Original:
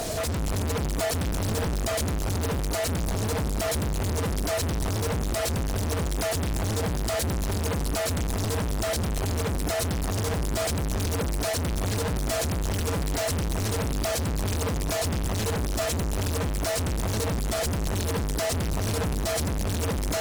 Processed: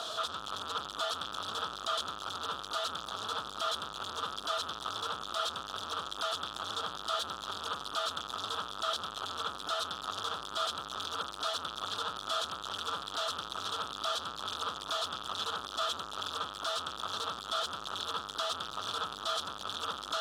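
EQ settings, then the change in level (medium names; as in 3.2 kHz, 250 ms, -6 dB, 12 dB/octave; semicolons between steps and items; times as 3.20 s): two resonant band-passes 2.1 kHz, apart 1.4 oct; +7.5 dB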